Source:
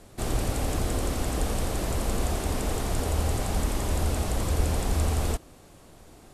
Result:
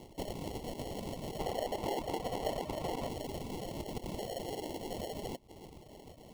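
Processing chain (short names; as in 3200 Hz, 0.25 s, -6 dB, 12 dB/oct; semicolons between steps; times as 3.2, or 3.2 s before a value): random spectral dropouts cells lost 34%; high shelf 4100 Hz +8 dB; spring tank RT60 3.5 s, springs 55 ms, chirp 80 ms, DRR 13 dB; LFO high-pass sine 0.37 Hz 350–3400 Hz; sample-and-hold 36×; Butterworth band-stop 1600 Hz, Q 1.8; compressor 6:1, threshold -39 dBFS, peak gain reduction 13.5 dB; reverb removal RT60 0.53 s; 1.39–3.09 bell 1100 Hz +8.5 dB 2.4 oct; gain +3 dB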